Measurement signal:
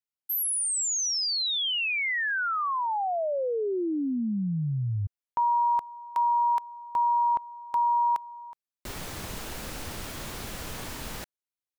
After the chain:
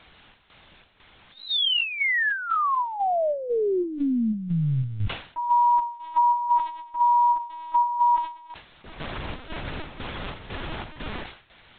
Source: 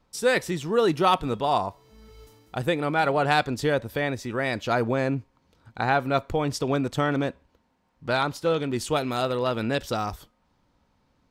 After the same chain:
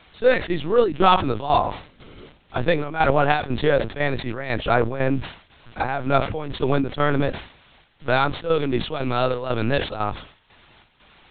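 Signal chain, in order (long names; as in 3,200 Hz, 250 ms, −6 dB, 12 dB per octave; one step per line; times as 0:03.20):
background noise white −51 dBFS
square-wave tremolo 2 Hz, depth 65%, duty 65%
linear-prediction vocoder at 8 kHz pitch kept
level that may fall only so fast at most 120 dB per second
level +5 dB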